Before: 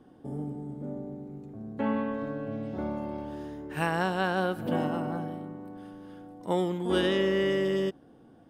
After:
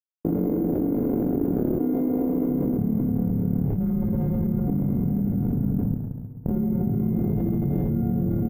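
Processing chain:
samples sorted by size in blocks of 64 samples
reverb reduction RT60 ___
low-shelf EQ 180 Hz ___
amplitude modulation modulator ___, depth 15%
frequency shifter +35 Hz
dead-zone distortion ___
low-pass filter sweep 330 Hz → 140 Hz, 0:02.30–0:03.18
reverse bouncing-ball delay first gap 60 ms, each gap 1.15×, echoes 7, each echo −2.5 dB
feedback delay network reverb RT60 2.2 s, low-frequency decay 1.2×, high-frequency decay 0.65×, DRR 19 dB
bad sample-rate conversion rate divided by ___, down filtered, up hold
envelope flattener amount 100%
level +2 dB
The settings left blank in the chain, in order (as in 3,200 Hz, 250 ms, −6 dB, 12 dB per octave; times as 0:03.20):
0.68 s, +3 dB, 37 Hz, −39.5 dBFS, 3×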